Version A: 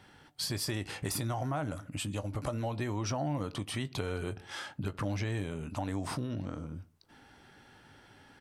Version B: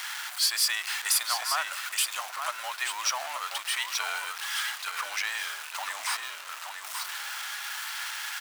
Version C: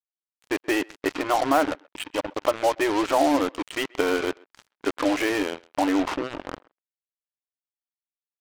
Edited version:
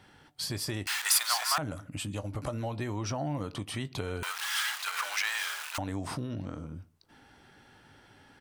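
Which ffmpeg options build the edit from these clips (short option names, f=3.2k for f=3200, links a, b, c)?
-filter_complex "[1:a]asplit=2[a][b];[0:a]asplit=3[c][d][e];[c]atrim=end=0.872[f];[a]atrim=start=0.868:end=1.582[g];[d]atrim=start=1.578:end=4.232[h];[b]atrim=start=4.228:end=5.782[i];[e]atrim=start=5.778[j];[f][g]acrossfade=d=0.004:c1=hsin:c2=hsin[k];[k][h]acrossfade=d=0.004:c1=hsin:c2=hsin[l];[l][i]acrossfade=d=0.004:c1=hsin:c2=hsin[m];[m][j]acrossfade=d=0.004:c1=hsin:c2=hsin"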